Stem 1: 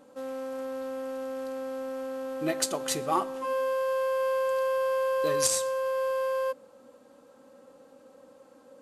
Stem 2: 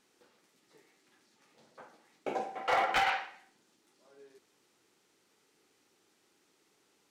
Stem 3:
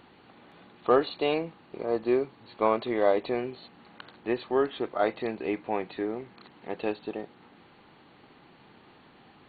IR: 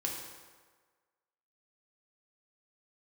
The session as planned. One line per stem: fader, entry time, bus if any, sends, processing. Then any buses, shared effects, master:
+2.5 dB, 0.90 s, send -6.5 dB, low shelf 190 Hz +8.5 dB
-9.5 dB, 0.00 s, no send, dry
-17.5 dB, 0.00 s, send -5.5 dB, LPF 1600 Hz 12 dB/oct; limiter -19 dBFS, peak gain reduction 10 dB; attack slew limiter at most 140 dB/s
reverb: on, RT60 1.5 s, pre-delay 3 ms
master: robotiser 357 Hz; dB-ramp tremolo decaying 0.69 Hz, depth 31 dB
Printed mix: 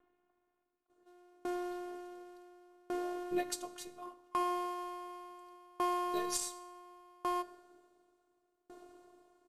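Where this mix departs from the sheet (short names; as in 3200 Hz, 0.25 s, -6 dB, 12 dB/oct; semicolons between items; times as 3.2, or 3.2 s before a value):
stem 1: send -6.5 dB -> -12.5 dB; stem 2: muted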